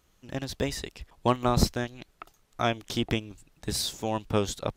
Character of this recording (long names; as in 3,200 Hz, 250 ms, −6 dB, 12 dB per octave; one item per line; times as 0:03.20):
background noise floor −67 dBFS
spectral slope −4.5 dB per octave